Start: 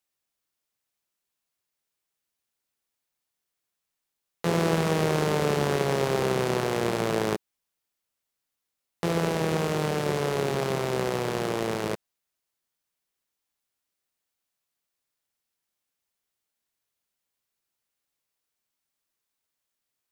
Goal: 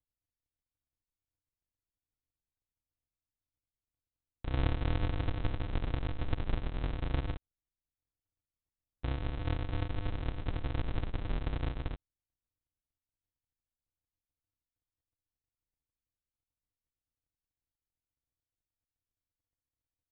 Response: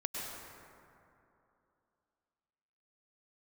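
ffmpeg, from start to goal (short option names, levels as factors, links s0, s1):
-af "aemphasis=mode=reproduction:type=50fm,aecho=1:1:3.2:0.68,aresample=8000,acrusher=samples=40:mix=1:aa=0.000001,aresample=44100,volume=0.473"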